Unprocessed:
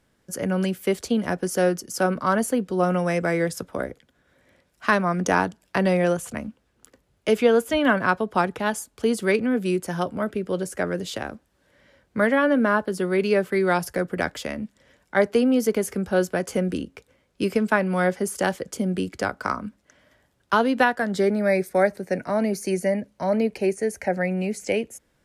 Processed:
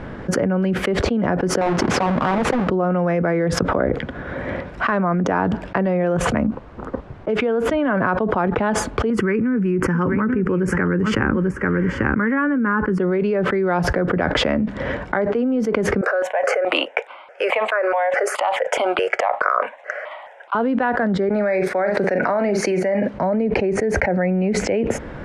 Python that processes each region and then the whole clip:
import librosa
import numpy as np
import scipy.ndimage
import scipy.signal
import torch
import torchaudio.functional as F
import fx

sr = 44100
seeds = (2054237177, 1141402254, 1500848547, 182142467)

y = fx.chain(x, sr, fx.halfwave_hold(),
    fx.highpass(hz=55.0, slope=12),
    fx.doppler_dist(depth_ms=0.75), at=(1.61, 2.7))
y = fx.high_shelf_res(y, sr, hz=1700.0, db=-13.5, q=1.5, at=(6.46, 7.28), fade=0.02)
y = fx.level_steps(y, sr, step_db=13, at=(6.46, 7.28), fade=0.02)
y = fx.dmg_noise_colour(y, sr, seeds[0], colour='pink', level_db=-77.0, at=(6.46, 7.28), fade=0.02)
y = fx.chain(y, sr, fx.fixed_phaser(hz=1600.0, stages=4),
    fx.echo_single(ms=841, db=-16.0), at=(9.1, 13.0))
y = fx.chain(y, sr, fx.cheby2_highpass(hz=210.0, order=4, stop_db=50),
    fx.phaser_held(hz=4.7, low_hz=870.0, high_hz=1800.0), at=(16.01, 20.55))
y = fx.chain(y, sr, fx.highpass(hz=790.0, slope=6),
    fx.doubler(ms=44.0, db=-12.0), at=(21.29, 23.14))
y = scipy.signal.sosfilt(scipy.signal.butter(2, 1600.0, 'lowpass', fs=sr, output='sos'), y)
y = fx.env_flatten(y, sr, amount_pct=100)
y = y * librosa.db_to_amplitude(-5.0)